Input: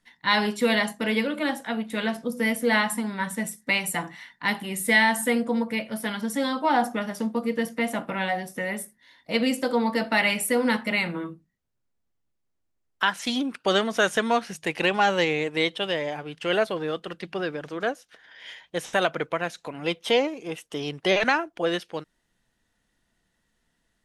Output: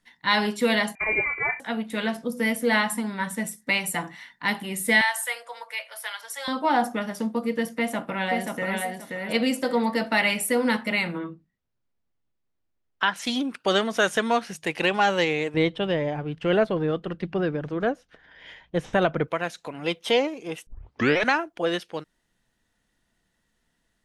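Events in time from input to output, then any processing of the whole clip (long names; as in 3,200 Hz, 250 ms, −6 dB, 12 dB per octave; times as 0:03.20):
0:00.95–0:01.60: voice inversion scrambler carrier 2,600 Hz
0:05.01–0:06.48: Bessel high-pass filter 1,000 Hz, order 6
0:07.73–0:08.79: delay throw 530 ms, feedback 25%, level −3.5 dB
0:11.18–0:13.16: low-pass filter 4,600 Hz
0:15.54–0:19.28: RIAA equalisation playback
0:20.67: tape start 0.57 s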